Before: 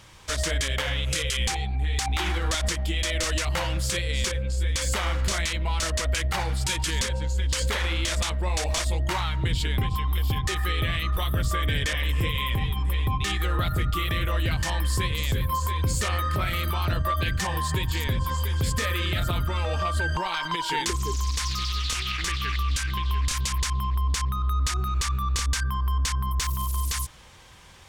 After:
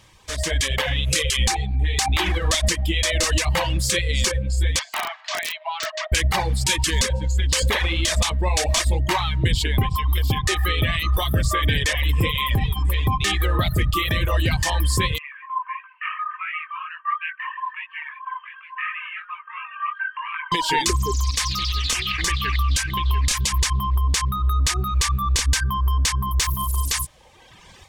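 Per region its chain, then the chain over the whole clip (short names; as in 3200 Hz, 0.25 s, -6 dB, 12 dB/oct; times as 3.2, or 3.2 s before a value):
4.79–6.12 Chebyshev high-pass 620 Hz, order 10 + air absorption 180 m + wrapped overs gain 22.5 dB
15.18–20.52 Chebyshev band-pass 1000–2800 Hz, order 5 + chorus 2.9 Hz, delay 18.5 ms, depth 3.6 ms
whole clip: notch 1400 Hz, Q 7.5; reverb removal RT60 1.3 s; AGC gain up to 9.5 dB; gain -2 dB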